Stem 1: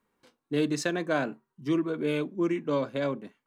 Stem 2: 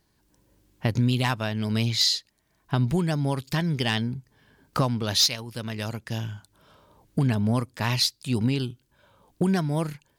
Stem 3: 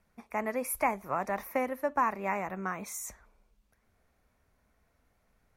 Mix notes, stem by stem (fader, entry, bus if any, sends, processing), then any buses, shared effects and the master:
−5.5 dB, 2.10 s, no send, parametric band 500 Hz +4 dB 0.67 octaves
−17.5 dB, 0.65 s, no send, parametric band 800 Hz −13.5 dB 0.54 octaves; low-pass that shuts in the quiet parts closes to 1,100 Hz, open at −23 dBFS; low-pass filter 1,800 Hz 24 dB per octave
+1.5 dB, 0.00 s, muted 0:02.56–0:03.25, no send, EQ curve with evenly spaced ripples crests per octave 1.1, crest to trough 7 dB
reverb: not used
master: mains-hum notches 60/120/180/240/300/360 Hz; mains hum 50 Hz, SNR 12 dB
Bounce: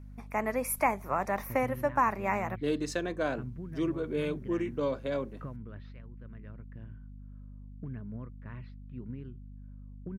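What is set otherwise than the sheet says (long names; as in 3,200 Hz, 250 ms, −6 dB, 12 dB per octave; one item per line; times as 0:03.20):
stem 2: missing low-pass that shuts in the quiet parts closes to 1,100 Hz, open at −23 dBFS
stem 3: missing EQ curve with evenly spaced ripples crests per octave 1.1, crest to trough 7 dB
master: missing mains-hum notches 60/120/180/240/300/360 Hz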